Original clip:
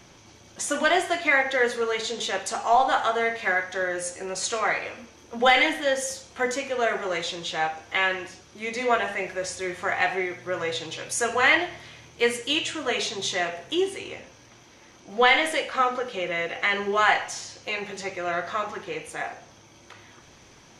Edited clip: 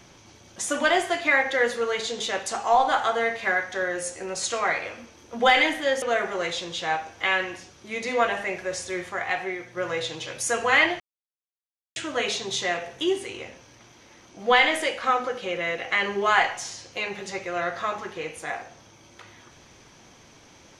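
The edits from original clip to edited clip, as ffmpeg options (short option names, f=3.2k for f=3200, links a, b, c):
-filter_complex "[0:a]asplit=6[a][b][c][d][e][f];[a]atrim=end=6.022[g];[b]atrim=start=6.728:end=9.802[h];[c]atrim=start=9.798:end=10.482,asetpts=PTS-STARTPTS,volume=-3.5dB[i];[d]atrim=start=10.478:end=11.71,asetpts=PTS-STARTPTS,afade=t=out:st=1.228:d=0.004:c=hsin[j];[e]atrim=start=11.71:end=12.67,asetpts=PTS-STARTPTS,volume=0[k];[f]atrim=start=12.67,asetpts=PTS-STARTPTS,afade=t=in:d=0.004:c=hsin[l];[g][h]acrossfade=d=0.004:c1=hsin:c2=hsin[m];[m][i]acrossfade=d=0.004:c1=hsin:c2=hsin[n];[j][k][l]concat=n=3:v=0:a=1[o];[n][o]acrossfade=d=0.004:c1=hsin:c2=hsin"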